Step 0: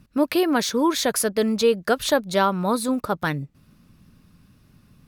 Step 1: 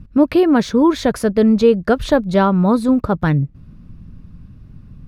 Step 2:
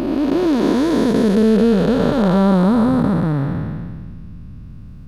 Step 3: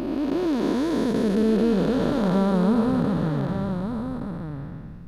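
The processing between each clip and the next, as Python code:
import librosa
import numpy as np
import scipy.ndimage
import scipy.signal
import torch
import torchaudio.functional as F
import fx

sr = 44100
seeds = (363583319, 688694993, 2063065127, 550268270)

y1 = fx.riaa(x, sr, side='playback')
y1 = y1 * 10.0 ** (3.0 / 20.0)
y2 = fx.spec_blur(y1, sr, span_ms=777.0)
y2 = y2 * 10.0 ** (6.0 / 20.0)
y3 = y2 + 10.0 ** (-7.5 / 20.0) * np.pad(y2, (int(1173 * sr / 1000.0), 0))[:len(y2)]
y3 = y3 * 10.0 ** (-7.5 / 20.0)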